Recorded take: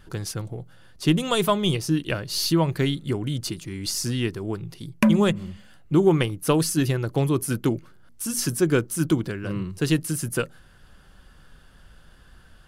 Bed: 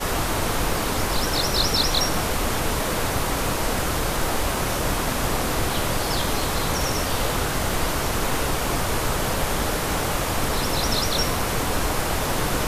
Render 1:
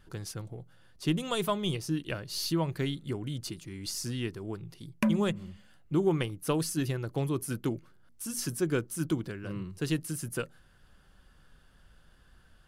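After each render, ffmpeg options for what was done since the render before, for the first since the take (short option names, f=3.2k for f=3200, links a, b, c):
-af "volume=-8.5dB"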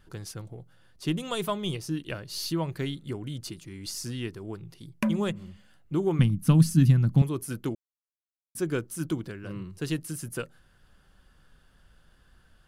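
-filter_complex "[0:a]asettb=1/sr,asplit=3[a][b][c];[a]atrim=end=6.194[d];[b]atrim=start=6.19:end=7.22,asetpts=PTS-STARTPTS,afade=t=in:d=0.004:c=qsin,afade=t=out:st=1.026:d=0.004:c=qsin,lowshelf=f=290:t=q:w=3:g=11.5[e];[c]atrim=start=7.216[f];[d][e]acrossfade=d=0.004:c1=hsin:c2=qsin[g];[g][f]acrossfade=d=0.004:c1=qsin:c2=hsin,asplit=3[h][i][j];[h]atrim=end=7.75,asetpts=PTS-STARTPTS,afade=t=out:st=7.746:d=0.004:c=hsin[k];[i]atrim=start=7.75:end=8.55,asetpts=PTS-STARTPTS,volume=0[l];[j]atrim=start=8.55,asetpts=PTS-STARTPTS,afade=t=in:d=0.004:c=hsin[m];[k][l][m]concat=n=3:v=0:a=1"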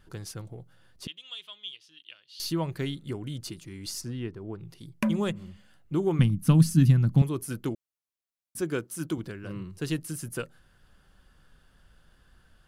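-filter_complex "[0:a]asettb=1/sr,asplit=3[a][b][c];[a]atrim=end=1.074[d];[b]atrim=start=1.07:end=2.4,asetpts=PTS-STARTPTS,afade=t=in:d=0.004:c=qsin,afade=t=out:st=1.326:d=0.004:c=qsin,bandpass=f=3.2k:t=q:w=5[e];[c]atrim=start=2.396[f];[d][e]acrossfade=d=0.004:c1=hsin:c2=qsin[g];[g][f]acrossfade=d=0.004:c1=qsin:c2=hsin,asplit=3[h][i][j];[h]afade=t=out:st=4:d=0.02[k];[i]lowpass=f=1.3k:p=1,afade=t=in:st=4:d=0.02,afade=t=out:st=4.59:d=0.02[l];[j]afade=t=in:st=4.59:d=0.02[m];[k][l][m]amix=inputs=3:normalize=0,asettb=1/sr,asplit=3[n][o][p];[n]atrim=end=8.614[q];[o]atrim=start=8.61:end=9.18,asetpts=PTS-STARTPTS,afade=t=in:d=0.004:c=qsin,afade=t=out:st=0.566:d=0.004:c=qsin,highpass=f=160:p=1[r];[p]atrim=start=9.176[s];[q][r]acrossfade=d=0.004:c1=hsin:c2=qsin[t];[t][s]acrossfade=d=0.004:c1=qsin:c2=hsin"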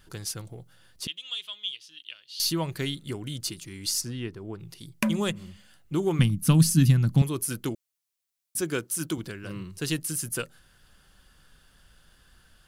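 -af "highshelf=f=2.3k:g=10"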